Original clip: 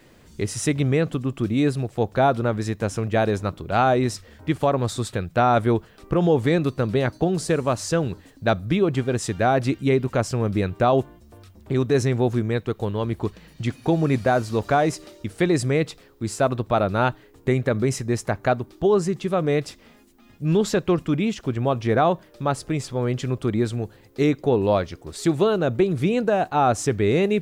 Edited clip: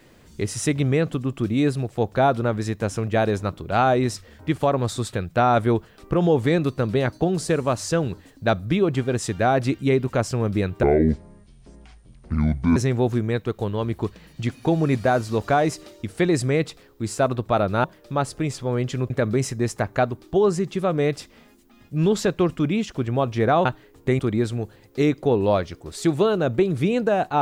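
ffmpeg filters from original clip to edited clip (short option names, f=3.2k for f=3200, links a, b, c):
-filter_complex "[0:a]asplit=7[a][b][c][d][e][f][g];[a]atrim=end=10.834[h];[b]atrim=start=10.83:end=11.97,asetpts=PTS-STARTPTS,asetrate=26019,aresample=44100,atrim=end_sample=85210,asetpts=PTS-STARTPTS[i];[c]atrim=start=11.966:end=17.052[j];[d]atrim=start=22.138:end=23.402[k];[e]atrim=start=17.588:end=22.142[l];[f]atrim=start=17.048:end=17.592[m];[g]atrim=start=23.398[n];[h][i]acrossfade=d=0.004:c1=hsin:c2=hsin[o];[o][j]acrossfade=d=0.004:c1=hsin:c2=hsin[p];[p][k]acrossfade=d=0.004:c1=hsin:c2=hsin[q];[q][l]acrossfade=d=0.004:c1=hsin:c2=hsin[r];[r][m]acrossfade=d=0.004:c1=hsin:c2=hsin[s];[s][n]acrossfade=d=0.004:c1=hsin:c2=hsin"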